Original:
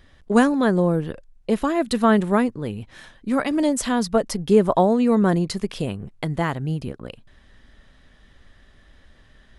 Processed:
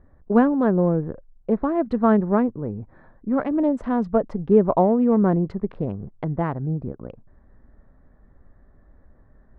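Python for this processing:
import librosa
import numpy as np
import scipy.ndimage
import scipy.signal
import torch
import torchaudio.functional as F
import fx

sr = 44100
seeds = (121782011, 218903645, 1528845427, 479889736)

y = fx.wiener(x, sr, points=15)
y = scipy.signal.sosfilt(scipy.signal.butter(2, 1200.0, 'lowpass', fs=sr, output='sos'), y)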